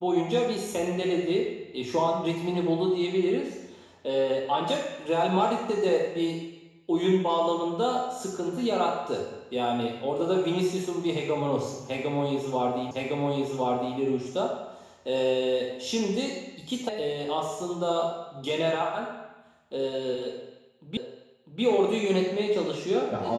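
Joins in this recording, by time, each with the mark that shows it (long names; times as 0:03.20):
0:12.91: the same again, the last 1.06 s
0:16.89: cut off before it has died away
0:20.97: the same again, the last 0.65 s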